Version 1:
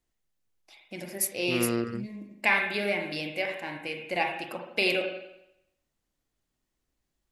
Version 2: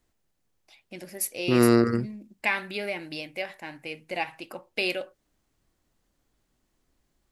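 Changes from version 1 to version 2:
second voice +9.5 dB; reverb: off

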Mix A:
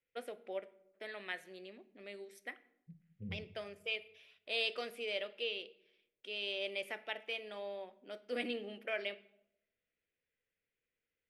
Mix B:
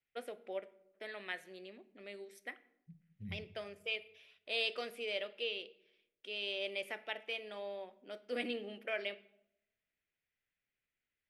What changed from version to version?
second voice: remove synth low-pass 490 Hz, resonance Q 6.1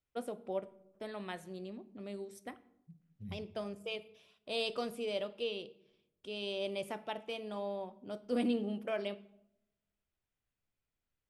first voice: remove HPF 450 Hz 12 dB/oct; master: add ten-band EQ 1000 Hz +10 dB, 2000 Hz -11 dB, 8000 Hz +7 dB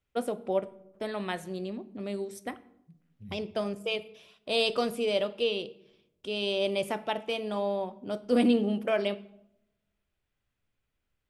first voice +9.0 dB

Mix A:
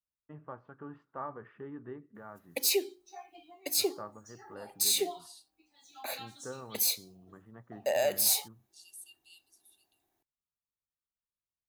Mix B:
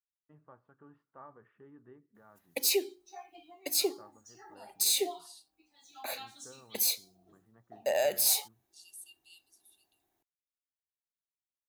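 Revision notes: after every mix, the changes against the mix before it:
first voice -11.5 dB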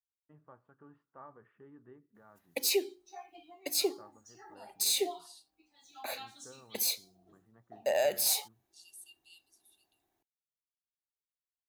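master: add high shelf 6600 Hz -4 dB

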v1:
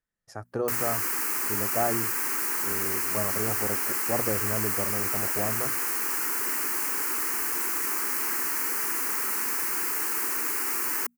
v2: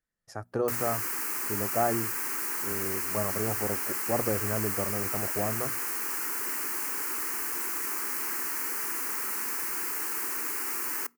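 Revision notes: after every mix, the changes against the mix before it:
background -5.0 dB; reverb: on, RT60 0.40 s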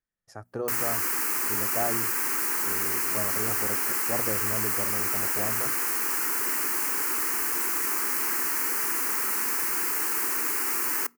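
speech -3.5 dB; background +5.0 dB

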